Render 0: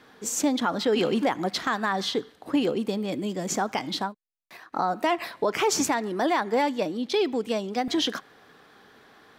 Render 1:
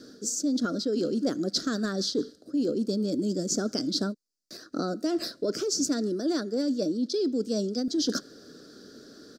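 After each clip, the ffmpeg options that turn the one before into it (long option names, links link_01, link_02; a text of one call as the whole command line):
ffmpeg -i in.wav -af "firequalizer=gain_entry='entry(120,0);entry(280,10);entry(410,4);entry(600,1);entry(870,-27);entry(1400,-2);entry(2100,-20);entry(3000,-12);entry(4700,12);entry(11000,-2)':delay=0.05:min_phase=1,areverse,acompressor=threshold=-28dB:ratio=10,areverse,volume=3.5dB" out.wav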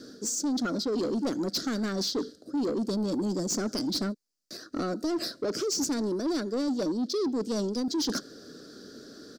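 ffmpeg -i in.wav -af "asoftclip=type=tanh:threshold=-26dB,volume=2dB" out.wav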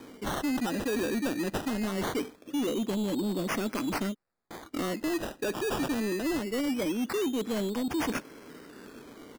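ffmpeg -i in.wav -af "acrusher=samples=16:mix=1:aa=0.000001:lfo=1:lforange=9.6:lforate=0.22,volume=-1dB" out.wav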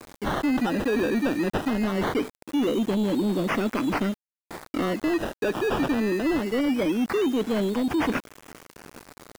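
ffmpeg -i in.wav -filter_complex "[0:a]acrossover=split=3700[link_01][link_02];[link_02]acompressor=threshold=-52dB:ratio=4:attack=1:release=60[link_03];[link_01][link_03]amix=inputs=2:normalize=0,aeval=exprs='val(0)*gte(abs(val(0)),0.00794)':channel_layout=same,volume=6dB" out.wav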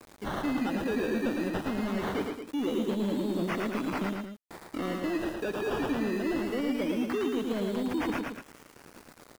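ffmpeg -i in.wav -af "aecho=1:1:110.8|224.5:0.631|0.355,volume=-7.5dB" out.wav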